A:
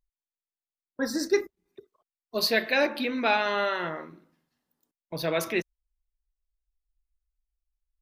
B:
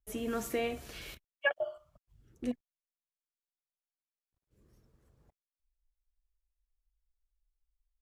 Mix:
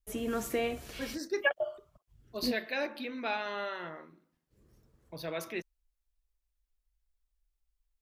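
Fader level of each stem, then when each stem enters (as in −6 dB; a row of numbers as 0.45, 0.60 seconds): −10.0, +1.5 decibels; 0.00, 0.00 seconds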